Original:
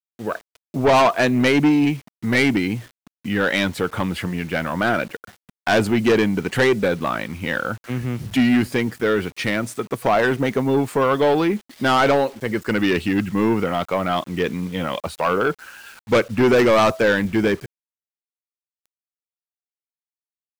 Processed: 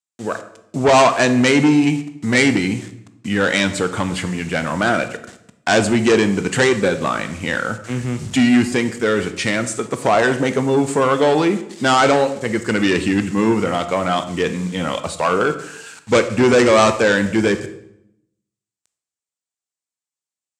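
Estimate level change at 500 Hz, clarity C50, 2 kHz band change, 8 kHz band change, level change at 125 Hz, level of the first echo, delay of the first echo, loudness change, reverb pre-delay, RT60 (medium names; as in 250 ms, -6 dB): +2.5 dB, 12.0 dB, +3.0 dB, +10.0 dB, +2.0 dB, no echo, no echo, +2.5 dB, 15 ms, 0.80 s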